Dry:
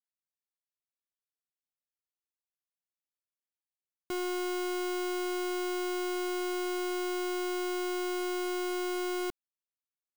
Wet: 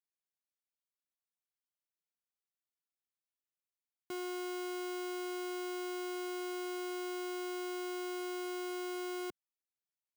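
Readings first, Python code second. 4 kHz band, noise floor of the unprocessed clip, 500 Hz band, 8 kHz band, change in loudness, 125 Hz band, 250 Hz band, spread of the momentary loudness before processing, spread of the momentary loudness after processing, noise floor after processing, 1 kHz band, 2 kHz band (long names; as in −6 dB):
−6.5 dB, below −85 dBFS, −6.5 dB, −6.5 dB, −6.5 dB, can't be measured, −6.5 dB, 1 LU, 1 LU, below −85 dBFS, −6.5 dB, −6.5 dB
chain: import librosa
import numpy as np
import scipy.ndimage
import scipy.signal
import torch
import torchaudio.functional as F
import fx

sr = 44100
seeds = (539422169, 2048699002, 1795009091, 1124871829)

y = scipy.signal.sosfilt(scipy.signal.butter(2, 120.0, 'highpass', fs=sr, output='sos'), x)
y = y * 10.0 ** (-6.5 / 20.0)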